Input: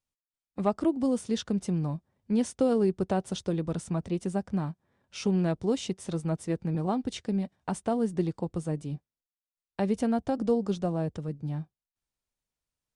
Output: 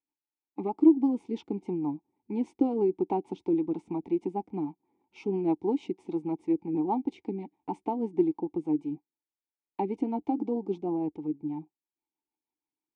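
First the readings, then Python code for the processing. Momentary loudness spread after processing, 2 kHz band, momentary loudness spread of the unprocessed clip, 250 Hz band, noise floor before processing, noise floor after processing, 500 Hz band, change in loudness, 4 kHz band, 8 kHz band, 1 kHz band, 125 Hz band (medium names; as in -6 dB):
11 LU, under -10 dB, 9 LU, +1.0 dB, under -85 dBFS, under -85 dBFS, -1.0 dB, 0.0 dB, under -15 dB, under -20 dB, +1.0 dB, -11.0 dB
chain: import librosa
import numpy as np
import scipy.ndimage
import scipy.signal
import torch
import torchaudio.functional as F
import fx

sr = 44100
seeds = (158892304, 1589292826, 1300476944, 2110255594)

y = fx.band_shelf(x, sr, hz=570.0, db=9.5, octaves=1.7)
y = fx.wow_flutter(y, sr, seeds[0], rate_hz=2.1, depth_cents=21.0)
y = fx.rotary(y, sr, hz=6.3)
y = fx.vowel_filter(y, sr, vowel='u')
y = y * librosa.db_to_amplitude(8.5)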